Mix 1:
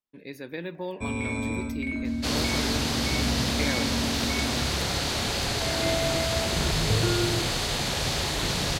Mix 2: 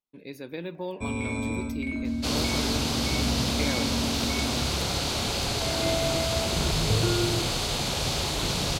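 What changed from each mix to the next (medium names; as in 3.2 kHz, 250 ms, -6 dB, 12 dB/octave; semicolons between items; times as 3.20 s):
master: add peaking EQ 1.8 kHz -7.5 dB 0.38 oct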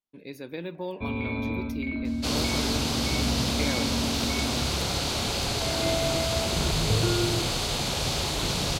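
first sound: add brick-wall FIR low-pass 4.8 kHz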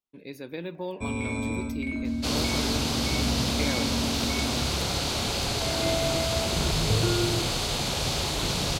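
first sound: remove brick-wall FIR low-pass 4.8 kHz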